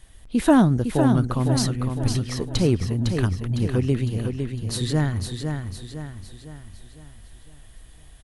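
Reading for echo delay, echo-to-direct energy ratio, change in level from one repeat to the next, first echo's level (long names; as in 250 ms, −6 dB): 506 ms, −5.0 dB, −6.5 dB, −6.0 dB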